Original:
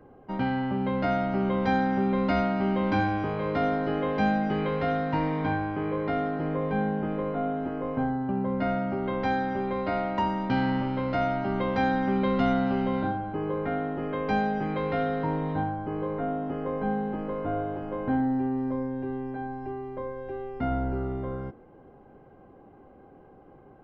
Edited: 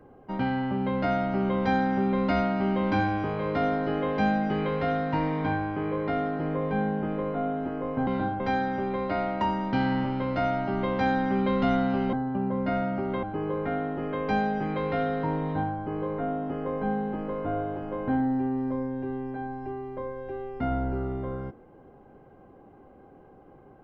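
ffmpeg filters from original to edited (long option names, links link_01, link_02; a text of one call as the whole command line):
ffmpeg -i in.wav -filter_complex "[0:a]asplit=5[link_01][link_02][link_03][link_04][link_05];[link_01]atrim=end=8.072[link_06];[link_02]atrim=start=12.898:end=13.232[link_07];[link_03]atrim=start=9.168:end=12.902[link_08];[link_04]atrim=start=8.068:end=9.172[link_09];[link_05]atrim=start=13.228[link_10];[link_06][link_07]acrossfade=duration=0.004:curve1=hsin:curve2=hsin[link_11];[link_11][link_08]acrossfade=duration=0.004:curve1=hsin:curve2=hsin[link_12];[link_12][link_09]acrossfade=duration=0.004:curve1=hsin:curve2=hsin[link_13];[link_13][link_10]acrossfade=duration=0.004:curve1=hsin:curve2=hsin" out.wav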